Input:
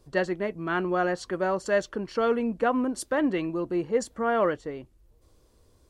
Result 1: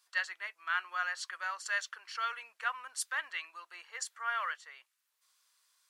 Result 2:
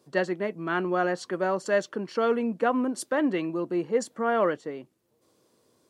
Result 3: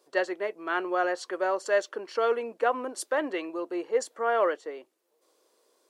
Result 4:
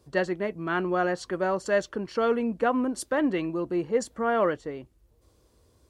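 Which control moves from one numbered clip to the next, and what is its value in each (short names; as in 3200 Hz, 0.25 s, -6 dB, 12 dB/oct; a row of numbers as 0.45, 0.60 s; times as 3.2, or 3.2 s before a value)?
HPF, cutoff: 1300, 150, 380, 42 Hz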